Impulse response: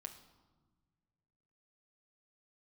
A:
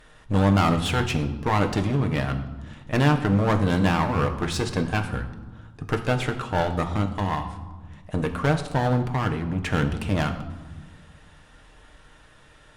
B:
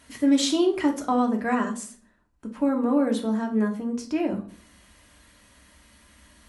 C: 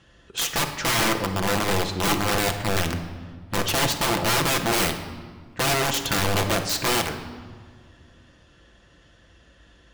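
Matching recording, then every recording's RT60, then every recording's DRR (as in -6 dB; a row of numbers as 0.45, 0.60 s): A; 1.4, 0.45, 1.9 s; 4.5, 1.5, 4.0 dB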